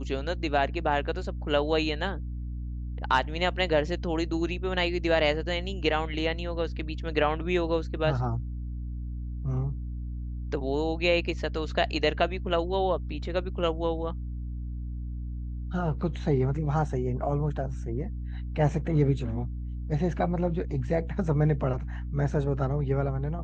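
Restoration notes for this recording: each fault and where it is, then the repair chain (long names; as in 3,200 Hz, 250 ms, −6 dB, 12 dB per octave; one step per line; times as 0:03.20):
mains hum 60 Hz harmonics 5 −34 dBFS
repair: hum removal 60 Hz, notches 5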